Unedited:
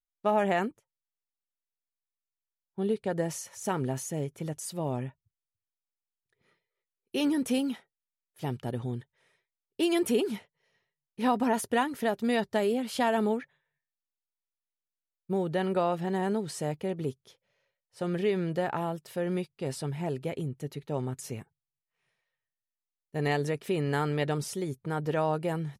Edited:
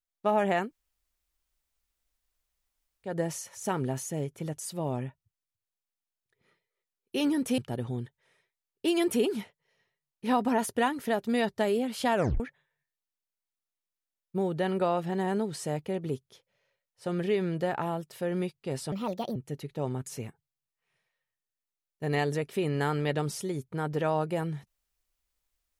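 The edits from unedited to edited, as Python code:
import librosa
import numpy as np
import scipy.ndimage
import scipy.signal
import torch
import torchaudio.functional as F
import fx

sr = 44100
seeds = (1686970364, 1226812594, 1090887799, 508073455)

y = fx.edit(x, sr, fx.room_tone_fill(start_s=0.66, length_s=2.42, crossfade_s=0.16),
    fx.cut(start_s=7.58, length_s=0.95),
    fx.tape_stop(start_s=13.1, length_s=0.25),
    fx.speed_span(start_s=19.87, length_s=0.61, speed=1.4), tone=tone)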